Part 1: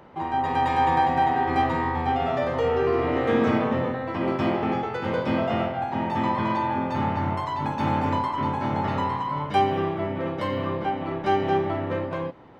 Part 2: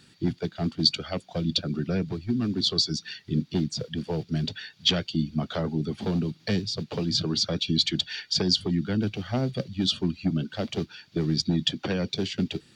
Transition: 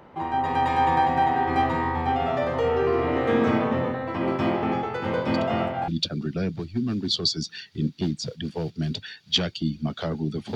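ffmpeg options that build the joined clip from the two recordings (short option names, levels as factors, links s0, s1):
-filter_complex "[1:a]asplit=2[s0][s1];[0:a]apad=whole_dur=10.55,atrim=end=10.55,atrim=end=5.882[s2];[s1]atrim=start=1.408:end=6.08[s3];[s0]atrim=start=0.87:end=1.41,asetpts=PTS-STARTPTS,volume=0.211,afade=t=in:d=0.004:c=hsin,afade=t=out:st=0.536:d=0.004:c=hsin,adelay=5340[s4];[s2][s3]acrossfade=d=0.004:c1=hsin:c2=hsin[s5];[s5][s4]amix=inputs=2:normalize=0"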